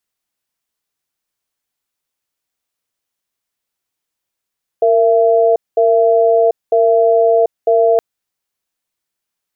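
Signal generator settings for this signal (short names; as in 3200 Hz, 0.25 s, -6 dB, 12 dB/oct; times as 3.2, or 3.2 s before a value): cadence 461 Hz, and 672 Hz, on 0.74 s, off 0.21 s, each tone -11 dBFS 3.17 s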